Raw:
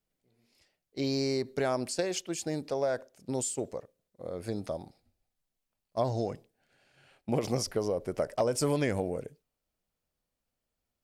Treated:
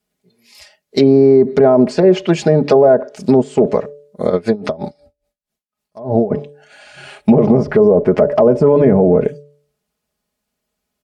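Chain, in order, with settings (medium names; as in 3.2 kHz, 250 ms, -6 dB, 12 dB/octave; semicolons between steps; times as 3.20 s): spectral noise reduction 15 dB; low-pass that closes with the level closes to 710 Hz, closed at -27.5 dBFS; high-pass 66 Hz; comb 4.8 ms, depth 68%; de-hum 145.3 Hz, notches 4; loudness maximiser +25.5 dB; 4.30–6.30 s: logarithmic tremolo 6.9 Hz -> 2.5 Hz, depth 22 dB; trim -1 dB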